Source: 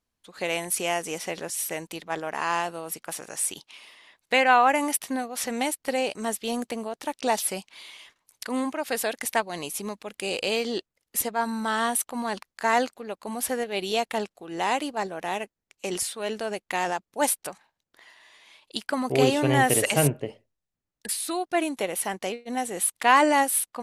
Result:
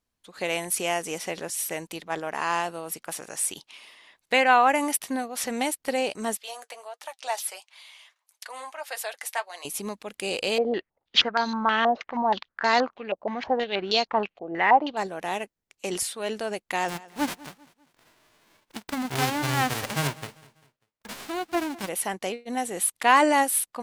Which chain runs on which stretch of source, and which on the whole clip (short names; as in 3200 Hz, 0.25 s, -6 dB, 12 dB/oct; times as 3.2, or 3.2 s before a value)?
6.37–9.65 flange 1.5 Hz, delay 4.5 ms, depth 3.5 ms, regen -49% + HPF 610 Hz 24 dB/oct
10.58–14.97 careless resampling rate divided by 3×, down none, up filtered + stepped low-pass 6.3 Hz 640–4600 Hz
16.88–21.87 spectral whitening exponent 0.1 + LPF 1600 Hz 6 dB/oct + feedback echo 0.197 s, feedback 40%, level -20.5 dB
whole clip: dry